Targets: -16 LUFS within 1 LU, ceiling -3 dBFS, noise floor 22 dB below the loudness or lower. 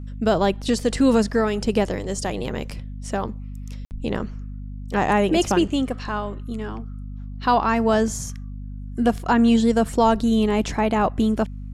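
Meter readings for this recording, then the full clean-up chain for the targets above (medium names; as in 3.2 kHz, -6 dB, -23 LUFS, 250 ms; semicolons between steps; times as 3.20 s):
dropouts 1; longest dropout 59 ms; hum 50 Hz; highest harmonic 250 Hz; hum level -31 dBFS; loudness -21.5 LUFS; peak level -7.0 dBFS; loudness target -16.0 LUFS
-> interpolate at 3.85 s, 59 ms; hum notches 50/100/150/200/250 Hz; trim +5.5 dB; peak limiter -3 dBFS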